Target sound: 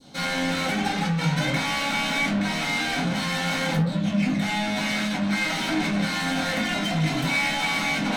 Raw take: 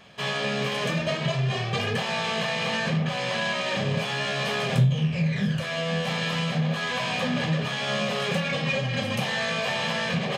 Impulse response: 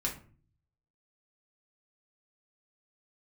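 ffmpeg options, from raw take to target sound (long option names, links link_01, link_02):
-filter_complex "[0:a]asoftclip=type=tanh:threshold=-29dB,asetrate=56007,aresample=44100,adynamicequalizer=threshold=0.00398:dfrequency=1800:dqfactor=0.83:tfrequency=1800:tqfactor=0.83:attack=5:release=100:ratio=0.375:range=3.5:mode=boostabove:tftype=bell,acrossover=split=2800[link_01][link_02];[link_01]adynamicsmooth=sensitivity=7:basefreq=1400[link_03];[link_03][link_02]amix=inputs=2:normalize=0[link_04];[1:a]atrim=start_sample=2205,asetrate=66150,aresample=44100[link_05];[link_04][link_05]afir=irnorm=-1:irlink=0,volume=3.5dB"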